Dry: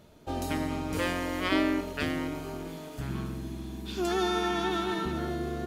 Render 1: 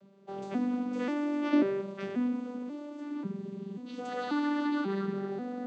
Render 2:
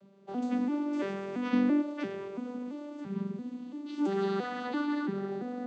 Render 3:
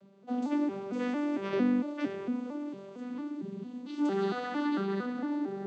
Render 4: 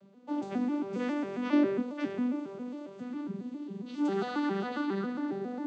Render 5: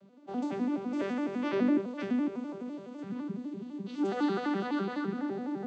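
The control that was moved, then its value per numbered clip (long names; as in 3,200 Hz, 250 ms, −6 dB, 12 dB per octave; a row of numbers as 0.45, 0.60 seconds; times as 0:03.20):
vocoder with an arpeggio as carrier, a note every: 538, 338, 227, 136, 84 milliseconds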